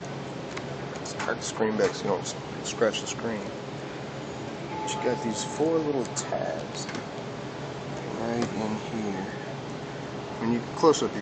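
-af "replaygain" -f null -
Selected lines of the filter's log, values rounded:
track_gain = +9.2 dB
track_peak = 0.316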